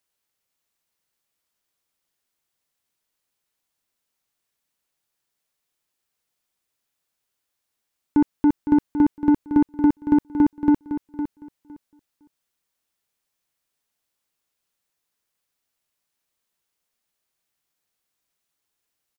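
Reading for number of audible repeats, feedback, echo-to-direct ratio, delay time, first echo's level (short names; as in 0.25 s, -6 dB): 2, 18%, -10.0 dB, 0.509 s, -10.0 dB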